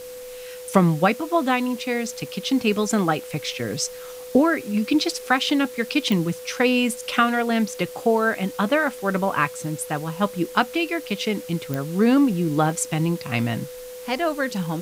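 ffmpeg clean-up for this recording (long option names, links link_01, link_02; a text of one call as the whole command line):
ffmpeg -i in.wav -af "adeclick=threshold=4,bandreject=frequency=500:width=30,afftdn=noise_reduction=29:noise_floor=-37" out.wav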